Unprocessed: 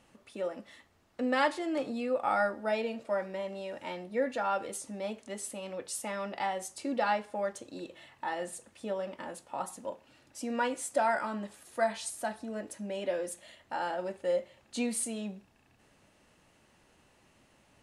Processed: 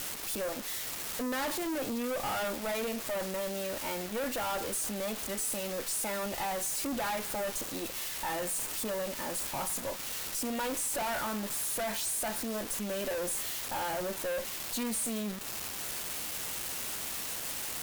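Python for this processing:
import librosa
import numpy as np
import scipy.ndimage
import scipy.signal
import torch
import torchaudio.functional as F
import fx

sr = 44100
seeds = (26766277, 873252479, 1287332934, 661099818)

y = x + 0.5 * 10.0 ** (-23.0 / 20.0) * np.diff(np.sign(x), prepend=np.sign(x[:1]))
y = fx.quant_dither(y, sr, seeds[0], bits=8, dither='none')
y = fx.tube_stage(y, sr, drive_db=40.0, bias=0.8)
y = F.gain(torch.from_numpy(y), 8.5).numpy()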